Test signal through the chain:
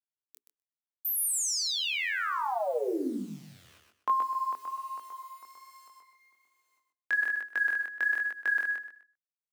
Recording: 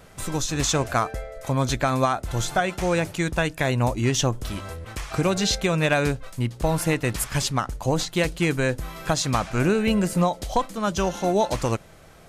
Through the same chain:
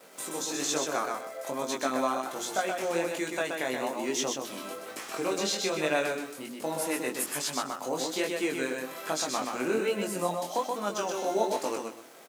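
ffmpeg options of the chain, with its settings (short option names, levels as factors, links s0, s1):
-filter_complex "[0:a]highshelf=f=7600:g=7,asplit=2[s0][s1];[s1]acompressor=threshold=0.0282:ratio=16,volume=1.33[s2];[s0][s2]amix=inputs=2:normalize=0,acrusher=bits=8:dc=4:mix=0:aa=0.000001,aecho=1:1:126|252|378|504:0.631|0.164|0.0427|0.0111,acompressor=mode=upward:threshold=0.00891:ratio=2.5,bandreject=f=60:t=h:w=6,bandreject=f=120:t=h:w=6,bandreject=f=180:t=h:w=6,bandreject=f=240:t=h:w=6,bandreject=f=300:t=h:w=6,bandreject=f=360:t=h:w=6,bandreject=f=420:t=h:w=6,agate=range=0.0224:threshold=0.00501:ratio=3:detection=peak,flanger=delay=19.5:depth=4.6:speed=1.2,highpass=f=270:w=0.5412,highpass=f=270:w=1.3066,lowshelf=f=480:g=5,volume=0.398"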